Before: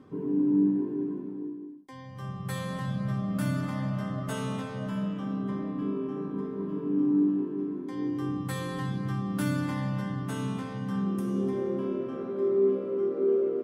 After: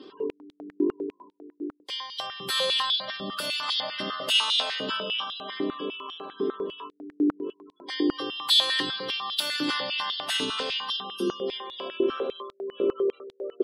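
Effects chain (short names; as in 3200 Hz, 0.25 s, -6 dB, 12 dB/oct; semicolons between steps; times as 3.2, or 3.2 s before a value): high shelf 2100 Hz +11.5 dB; limiter -23.5 dBFS, peak gain reduction 8.5 dB; band shelf 3700 Hz +12.5 dB 1.1 oct; spectral gate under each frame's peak -30 dB strong; stepped high-pass 10 Hz 350–3600 Hz; gain +1.5 dB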